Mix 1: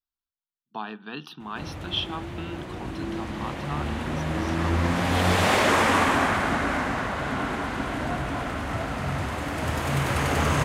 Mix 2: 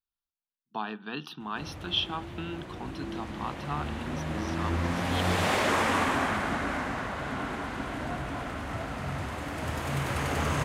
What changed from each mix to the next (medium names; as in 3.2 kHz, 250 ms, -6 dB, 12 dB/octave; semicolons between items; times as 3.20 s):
background -5.5 dB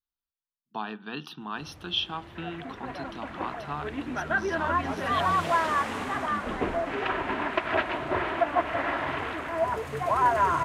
first sound -8.0 dB; second sound: unmuted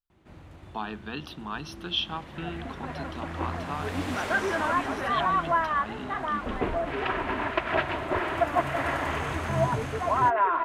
first sound: entry -1.30 s; master: add bass shelf 62 Hz +9 dB